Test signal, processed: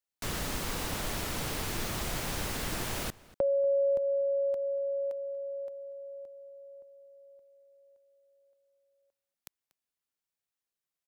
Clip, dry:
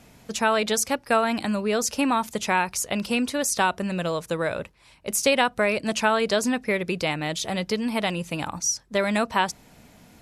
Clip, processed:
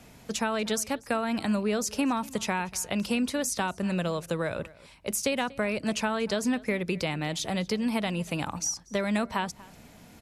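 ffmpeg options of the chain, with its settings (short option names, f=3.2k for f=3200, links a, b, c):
-filter_complex "[0:a]acrossover=split=250[a][b];[b]acompressor=threshold=-30dB:ratio=2.5[c];[a][c]amix=inputs=2:normalize=0,asplit=2[d][e];[e]adelay=239.1,volume=-21dB,highshelf=f=4k:g=-5.38[f];[d][f]amix=inputs=2:normalize=0"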